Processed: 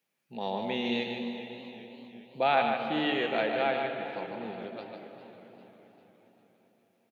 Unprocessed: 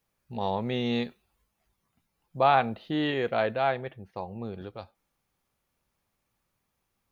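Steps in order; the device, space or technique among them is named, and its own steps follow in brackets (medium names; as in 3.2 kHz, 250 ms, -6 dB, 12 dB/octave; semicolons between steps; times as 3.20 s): PA in a hall (high-pass 170 Hz 24 dB/octave; peaking EQ 2.5 kHz +6 dB 0.94 oct; delay 149 ms -6 dB; reverberation RT60 3.9 s, pre-delay 94 ms, DRR 7 dB); 0.91–2.52 s: band-stop 1.1 kHz, Q 6; peaking EQ 1.1 kHz -5.5 dB 0.53 oct; modulated delay 402 ms, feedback 56%, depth 92 cents, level -16 dB; trim -3.5 dB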